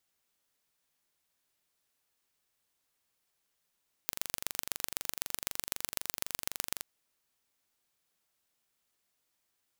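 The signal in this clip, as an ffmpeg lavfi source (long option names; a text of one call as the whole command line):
ffmpeg -f lavfi -i "aevalsrc='0.668*eq(mod(n,1845),0)*(0.5+0.5*eq(mod(n,5535),0))':duration=2.75:sample_rate=44100" out.wav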